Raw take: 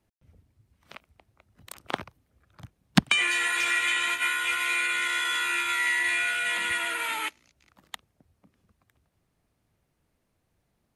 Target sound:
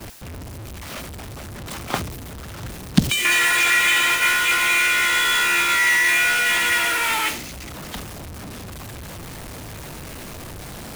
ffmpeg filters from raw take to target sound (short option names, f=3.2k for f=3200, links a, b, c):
-filter_complex "[0:a]aeval=exprs='val(0)+0.5*0.0891*sgn(val(0))':c=same,agate=range=-33dB:threshold=-21dB:ratio=3:detection=peak,asettb=1/sr,asplit=3[a][b][c];[a]atrim=end=1.984[d];[b]atrim=start=1.98:end=3.25,asetpts=PTS-STARTPTS,afade=t=in:d=0.004:c=qsin,afade=t=out:st=1.266:d=0.004:c=qsin,acrossover=split=480|3000[e][f][g];[f]acompressor=threshold=-42dB:ratio=3[h];[e][h][g]amix=inputs=3:normalize=0[i];[c]atrim=start=3.246[j];[d][i]acrossfade=d=0.004:c1=hsin:c2=qsin[k];[k][j]acrossfade=d=0.004:c1=qsin:c2=hsin,volume=4dB"